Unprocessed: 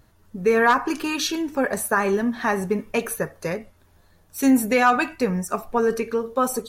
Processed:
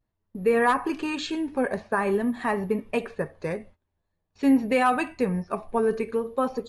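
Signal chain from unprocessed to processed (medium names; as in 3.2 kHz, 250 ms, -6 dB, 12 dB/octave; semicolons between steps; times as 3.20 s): gate -45 dBFS, range -19 dB; careless resampling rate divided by 4×, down filtered, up zero stuff; Gaussian low-pass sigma 1.9 samples; peaking EQ 1.4 kHz -6.5 dB 0.36 oct; vibrato 0.48 Hz 44 cents; trim -2.5 dB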